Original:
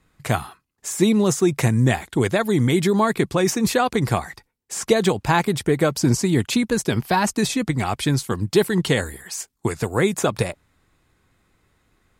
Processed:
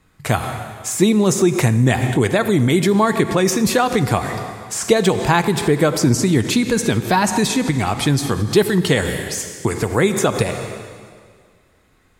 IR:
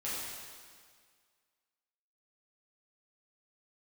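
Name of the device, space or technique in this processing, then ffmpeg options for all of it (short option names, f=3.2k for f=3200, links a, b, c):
ducked reverb: -filter_complex "[0:a]asplit=3[a][b][c];[1:a]atrim=start_sample=2205[d];[b][d]afir=irnorm=-1:irlink=0[e];[c]apad=whole_len=537957[f];[e][f]sidechaincompress=threshold=-26dB:ratio=8:attack=9.8:release=104,volume=-5.5dB[g];[a][g]amix=inputs=2:normalize=0,volume=2.5dB"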